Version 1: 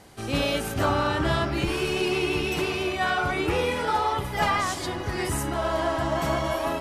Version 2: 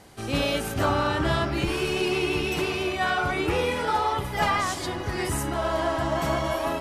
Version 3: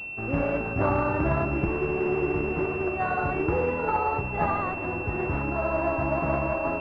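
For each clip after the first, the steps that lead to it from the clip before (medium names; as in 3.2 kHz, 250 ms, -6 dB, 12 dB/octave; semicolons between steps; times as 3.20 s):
no audible change
companded quantiser 4-bit; class-D stage that switches slowly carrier 2.7 kHz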